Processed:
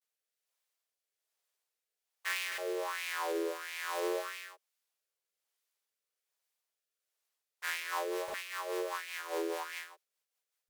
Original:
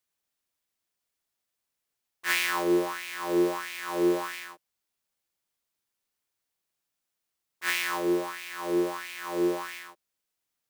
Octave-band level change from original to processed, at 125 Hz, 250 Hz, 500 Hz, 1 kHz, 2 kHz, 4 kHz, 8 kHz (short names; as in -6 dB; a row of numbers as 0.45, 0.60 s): under -30 dB, -16.0 dB, -7.5 dB, -5.5 dB, -6.5 dB, -6.0 dB, -6.0 dB